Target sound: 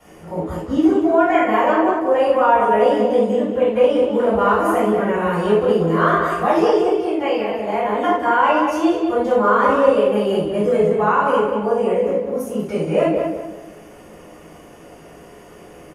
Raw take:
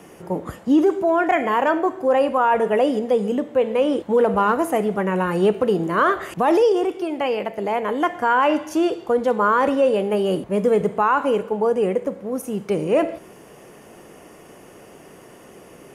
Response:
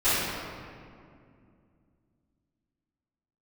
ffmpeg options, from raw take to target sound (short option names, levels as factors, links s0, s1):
-filter_complex "[0:a]asplit=2[s0][s1];[s1]adelay=188,lowpass=f=2400:p=1,volume=0.631,asplit=2[s2][s3];[s3]adelay=188,lowpass=f=2400:p=1,volume=0.37,asplit=2[s4][s5];[s5]adelay=188,lowpass=f=2400:p=1,volume=0.37,asplit=2[s6][s7];[s7]adelay=188,lowpass=f=2400:p=1,volume=0.37,asplit=2[s8][s9];[s9]adelay=188,lowpass=f=2400:p=1,volume=0.37[s10];[s0][s2][s4][s6][s8][s10]amix=inputs=6:normalize=0[s11];[1:a]atrim=start_sample=2205,afade=t=out:st=0.24:d=0.01,atrim=end_sample=11025,asetrate=79380,aresample=44100[s12];[s11][s12]afir=irnorm=-1:irlink=0,volume=0.355"